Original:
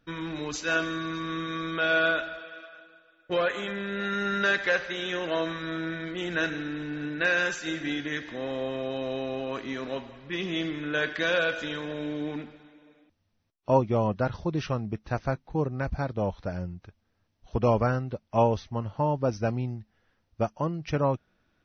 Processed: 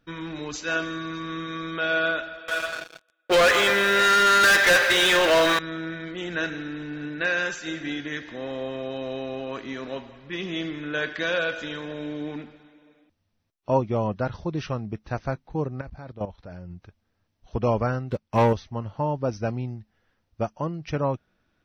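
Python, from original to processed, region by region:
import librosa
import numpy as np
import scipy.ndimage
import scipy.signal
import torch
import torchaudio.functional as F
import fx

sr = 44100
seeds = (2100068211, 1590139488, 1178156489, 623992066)

y = fx.chain(x, sr, fx.highpass(hz=480.0, slope=12),
    fx.leveller(passes=5), at=(2.48, 5.59))
y = fx.chain(y, sr, fx.peak_eq(hz=6500.0, db=-6.5, octaves=0.32),
    fx.level_steps(step_db=13), at=(15.81, 16.71))
y = fx.chain(y, sr, fx.peak_eq(hz=660.0, db=-10.0, octaves=0.22),
    fx.leveller(passes=2), at=(18.11, 18.53))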